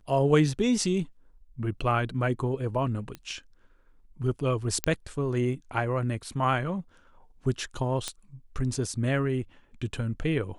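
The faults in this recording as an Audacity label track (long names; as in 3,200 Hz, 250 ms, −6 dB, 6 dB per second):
3.150000	3.150000	click −23 dBFS
4.840000	4.840000	click −8 dBFS
8.080000	8.080000	click −16 dBFS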